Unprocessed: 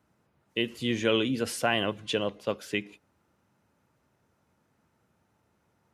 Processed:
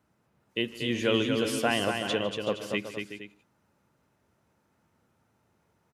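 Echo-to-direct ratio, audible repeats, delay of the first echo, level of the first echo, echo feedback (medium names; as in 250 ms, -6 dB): -4.0 dB, 4, 153 ms, -18.5 dB, no regular repeats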